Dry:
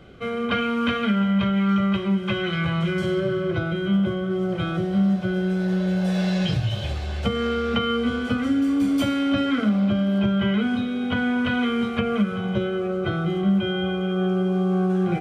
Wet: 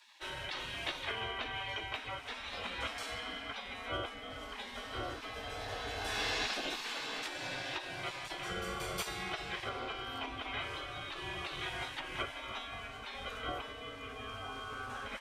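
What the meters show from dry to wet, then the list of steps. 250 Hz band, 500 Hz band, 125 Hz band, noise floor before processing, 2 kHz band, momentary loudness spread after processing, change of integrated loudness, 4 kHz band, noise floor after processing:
-30.0 dB, -18.5 dB, -25.0 dB, -28 dBFS, -9.0 dB, 6 LU, -16.5 dB, -7.0 dB, -47 dBFS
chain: frequency shift -16 Hz; gain riding 2 s; spectral gate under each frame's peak -25 dB weak

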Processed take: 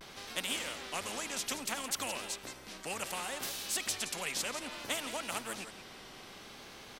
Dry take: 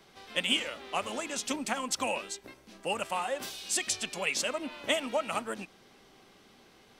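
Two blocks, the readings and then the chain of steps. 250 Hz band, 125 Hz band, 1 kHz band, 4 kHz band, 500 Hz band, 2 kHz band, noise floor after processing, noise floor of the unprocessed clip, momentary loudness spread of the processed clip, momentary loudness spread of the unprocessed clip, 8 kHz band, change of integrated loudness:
-7.0 dB, -2.0 dB, -6.5 dB, -4.0 dB, -8.5 dB, -4.5 dB, -51 dBFS, -60 dBFS, 14 LU, 11 LU, -1.5 dB, -4.5 dB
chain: delay 171 ms -18 dB; vibrato 0.63 Hz 56 cents; spectrum-flattening compressor 2:1; trim -5.5 dB

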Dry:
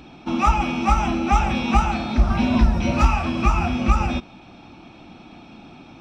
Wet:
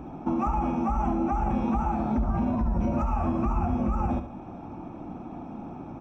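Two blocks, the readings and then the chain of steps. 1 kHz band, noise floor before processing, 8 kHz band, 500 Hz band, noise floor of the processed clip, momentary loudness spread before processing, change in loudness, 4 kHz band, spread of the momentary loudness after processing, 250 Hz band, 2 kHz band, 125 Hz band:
-7.0 dB, -45 dBFS, no reading, -3.5 dB, -41 dBFS, 3 LU, -6.5 dB, under -25 dB, 13 LU, -4.0 dB, -18.5 dB, -7.0 dB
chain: FFT filter 980 Hz 0 dB, 4.4 kHz -29 dB, 6.2 kHz -14 dB; peak limiter -16 dBFS, peak gain reduction 12 dB; compression 2.5:1, threshold -31 dBFS, peak gain reduction 8 dB; on a send: feedback delay 70 ms, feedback 45%, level -10 dB; on the sum: trim +4.5 dB

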